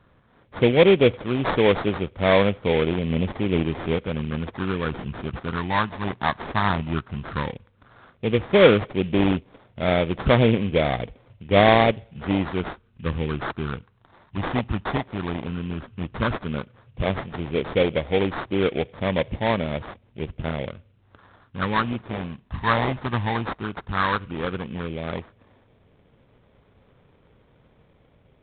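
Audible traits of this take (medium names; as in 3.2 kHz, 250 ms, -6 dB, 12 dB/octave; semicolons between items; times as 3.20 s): phasing stages 12, 0.12 Hz, lowest notch 490–1900 Hz; aliases and images of a low sample rate 2.8 kHz, jitter 20%; µ-law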